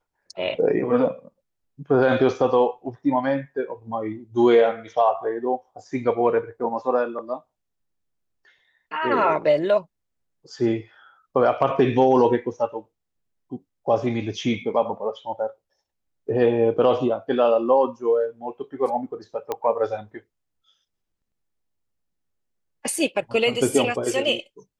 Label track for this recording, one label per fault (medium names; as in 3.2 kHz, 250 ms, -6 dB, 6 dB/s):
19.520000	19.520000	pop -13 dBFS